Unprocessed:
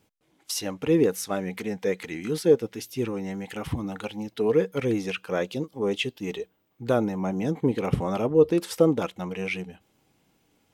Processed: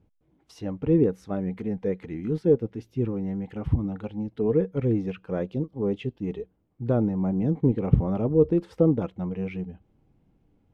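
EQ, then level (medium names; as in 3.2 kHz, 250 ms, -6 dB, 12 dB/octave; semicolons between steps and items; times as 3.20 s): tilt EQ -4.5 dB/octave; treble shelf 6.2 kHz -8.5 dB; -7.0 dB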